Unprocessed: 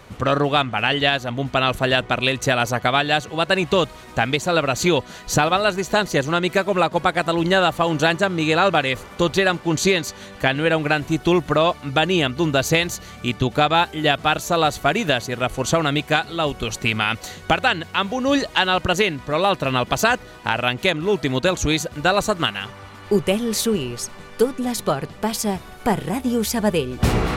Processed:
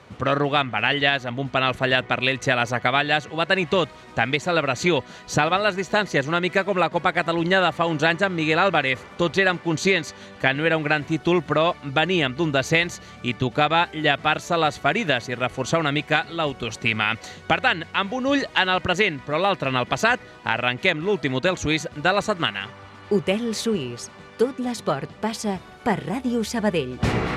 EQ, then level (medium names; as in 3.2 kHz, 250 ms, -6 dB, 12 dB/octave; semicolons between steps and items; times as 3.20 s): high-pass 81 Hz; dynamic bell 2 kHz, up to +6 dB, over -36 dBFS, Q 2.4; distance through air 59 m; -2.5 dB